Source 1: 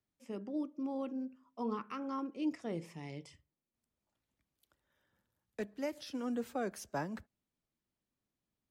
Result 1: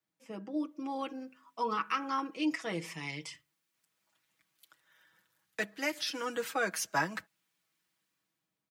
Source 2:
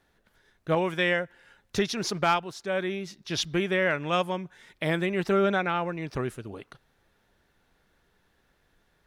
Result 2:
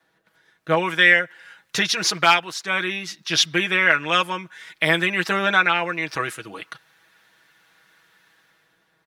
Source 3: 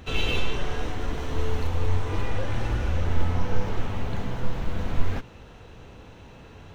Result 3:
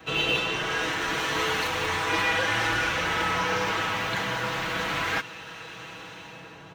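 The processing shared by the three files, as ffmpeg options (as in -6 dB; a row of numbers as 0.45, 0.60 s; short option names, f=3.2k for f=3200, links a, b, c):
-filter_complex "[0:a]highpass=120,equalizer=f=1.4k:w=0.52:g=4,aecho=1:1:6.2:0.67,adynamicequalizer=threshold=0.00794:dfrequency=160:dqfactor=1.7:tfrequency=160:tqfactor=1.7:attack=5:release=100:ratio=0.375:range=2.5:mode=cutabove:tftype=bell,acrossover=split=1200[a][b];[b]dynaudnorm=f=160:g=9:m=11.5dB[c];[a][c]amix=inputs=2:normalize=0,volume=-1dB"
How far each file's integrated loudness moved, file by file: +5.0, +8.0, +4.5 LU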